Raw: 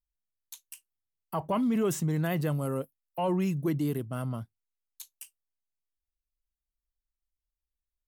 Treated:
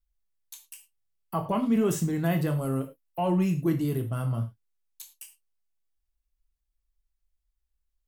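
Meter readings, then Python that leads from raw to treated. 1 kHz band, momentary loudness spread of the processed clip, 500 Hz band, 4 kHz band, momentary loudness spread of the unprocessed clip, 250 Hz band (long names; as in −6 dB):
+2.0 dB, 20 LU, +1.5 dB, +1.0 dB, 22 LU, +3.0 dB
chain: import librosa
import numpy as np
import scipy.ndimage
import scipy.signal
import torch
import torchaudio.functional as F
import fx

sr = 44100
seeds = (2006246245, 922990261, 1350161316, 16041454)

y = fx.low_shelf(x, sr, hz=100.0, db=10.0)
y = fx.rev_gated(y, sr, seeds[0], gate_ms=130, shape='falling', drr_db=4.0)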